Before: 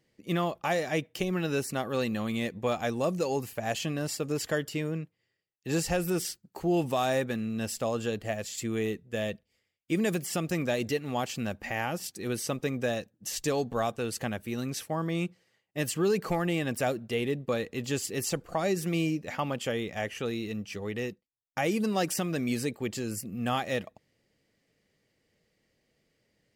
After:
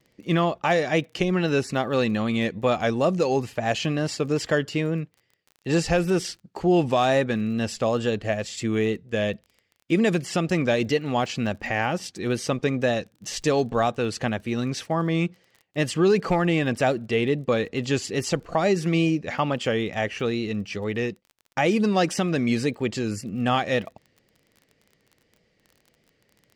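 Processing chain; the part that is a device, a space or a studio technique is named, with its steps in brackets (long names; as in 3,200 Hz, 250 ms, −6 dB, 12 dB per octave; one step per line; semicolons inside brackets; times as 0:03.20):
lo-fi chain (low-pass filter 5,400 Hz 12 dB per octave; tape wow and flutter; surface crackle 28 per second −47 dBFS)
level +7 dB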